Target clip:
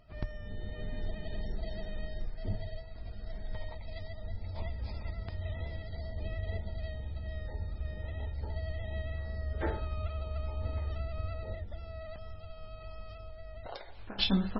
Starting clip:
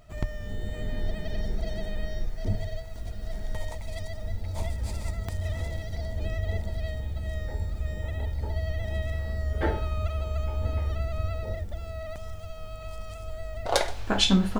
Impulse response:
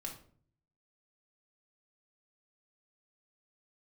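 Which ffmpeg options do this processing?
-filter_complex "[0:a]asettb=1/sr,asplit=3[link_01][link_02][link_03];[link_01]atrim=end=13.144[link_04];[link_02]atrim=start=13.14:end=14.19,asetpts=PTS-STARTPTS,afade=type=in:duration=0.004:curve=qsin,afade=type=out:start_time=1.046:duration=0.004:curve=qsin,acompressor=threshold=-33dB:ratio=16[link_05];[link_03]atrim=start=14.186[link_06];[link_04][link_05]acrossfade=duration=0.004:curve1=hsin:curve2=qsin[link_07];[link_07][link_06]acrossfade=duration=0.004:curve1=qsin:curve2=hsin,volume=-6.5dB" -ar 22050 -c:a libmp3lame -b:a 16k

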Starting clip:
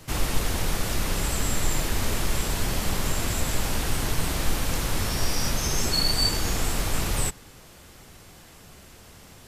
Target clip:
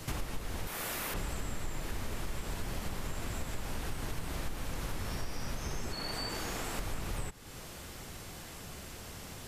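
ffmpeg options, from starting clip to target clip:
ffmpeg -i in.wav -filter_complex "[0:a]asettb=1/sr,asplit=3[link_01][link_02][link_03];[link_01]atrim=end=0.674[link_04];[link_02]atrim=start=0.67:end=1.14,asetpts=PTS-STARTPTS,afade=type=in:duration=0.004:curve=qsin,afade=type=out:start_time=0.466:duration=0.004:curve=qsin,aemphasis=mode=production:type=riaa[link_05];[link_03]atrim=start=1.136[link_06];[link_04][link_05]acrossfade=duration=0.004:curve1=hsin:curve2=qsin[link_07];[link_07][link_06]acrossfade=duration=0.004:curve1=qsin:curve2=hsin,acrossover=split=2700[link_08][link_09];[link_09]acompressor=threshold=-35dB:ratio=4:attack=1:release=60[link_10];[link_08][link_10]amix=inputs=2:normalize=0,asettb=1/sr,asplit=3[link_11][link_12][link_13];[link_11]atrim=end=5.944[link_14];[link_12]atrim=start=5.94:end=6.79,asetpts=PTS-STARTPTS,afade=type=in:duration=0.004:curve=qsin,afade=type=out:start_time=0.846:duration=0.004:curve=qsin,lowshelf=frequency=150:gain=-11.5[link_15];[link_13]atrim=start=6.786[link_16];[link_14][link_15]acrossfade=duration=0.004:curve1=hsin:curve2=qsin[link_17];[link_17][link_16]acrossfade=duration=0.004:curve1=qsin:curve2=hsin,acompressor=threshold=-38dB:ratio=4,volume=2.5dB" out.wav

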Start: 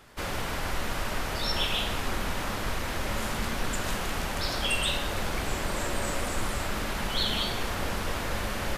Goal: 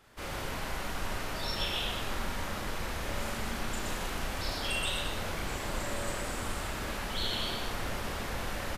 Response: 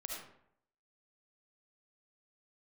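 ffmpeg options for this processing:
-af "aecho=1:1:34.99|122.4|221.6:0.794|0.708|0.355,volume=-8dB"

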